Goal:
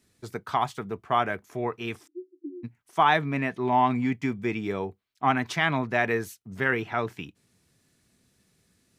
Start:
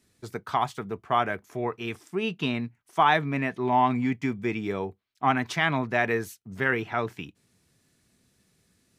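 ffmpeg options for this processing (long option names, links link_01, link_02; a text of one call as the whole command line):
ffmpeg -i in.wav -filter_complex "[0:a]asplit=3[link_01][link_02][link_03];[link_01]afade=type=out:start_time=2.06:duration=0.02[link_04];[link_02]asuperpass=centerf=320:order=20:qfactor=3.5,afade=type=in:start_time=2.06:duration=0.02,afade=type=out:start_time=2.63:duration=0.02[link_05];[link_03]afade=type=in:start_time=2.63:duration=0.02[link_06];[link_04][link_05][link_06]amix=inputs=3:normalize=0" out.wav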